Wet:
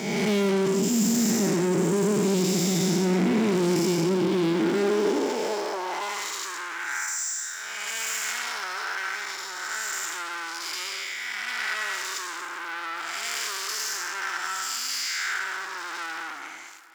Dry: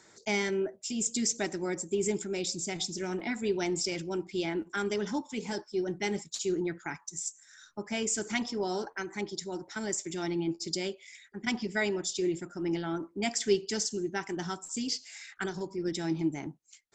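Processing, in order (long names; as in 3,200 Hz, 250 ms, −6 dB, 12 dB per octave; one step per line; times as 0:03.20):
spectrum smeared in time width 384 ms
leveller curve on the samples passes 5
delay with a low-pass on its return 163 ms, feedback 85%, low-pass 2,900 Hz, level −21 dB
high-pass filter sweep 180 Hz → 1,400 Hz, 0:04.48–0:06.42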